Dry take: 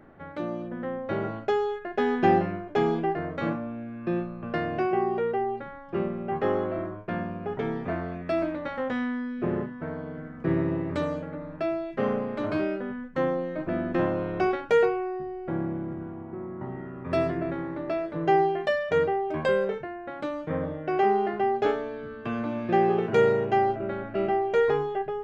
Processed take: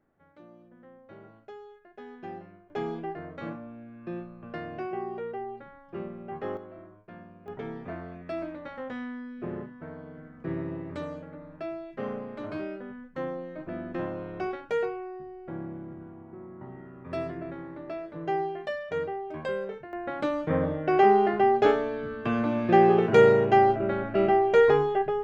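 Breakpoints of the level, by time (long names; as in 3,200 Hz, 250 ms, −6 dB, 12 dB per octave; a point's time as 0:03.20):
−20 dB
from 0:02.70 −8.5 dB
from 0:06.57 −16 dB
from 0:07.48 −7.5 dB
from 0:19.93 +3.5 dB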